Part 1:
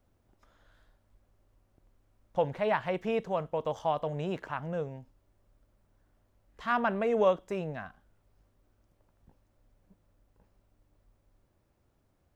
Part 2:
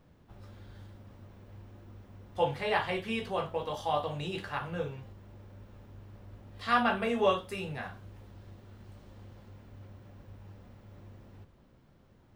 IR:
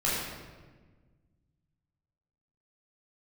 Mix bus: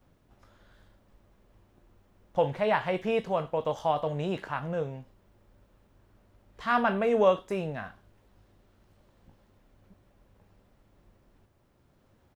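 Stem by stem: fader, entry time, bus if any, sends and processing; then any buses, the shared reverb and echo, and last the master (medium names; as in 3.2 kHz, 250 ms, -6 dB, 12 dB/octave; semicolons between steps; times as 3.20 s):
+2.5 dB, 0.00 s, no send, none
-1.5 dB, 13 ms, no send, bass shelf 190 Hz -6 dB; auto duck -7 dB, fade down 0.50 s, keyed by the first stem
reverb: none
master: none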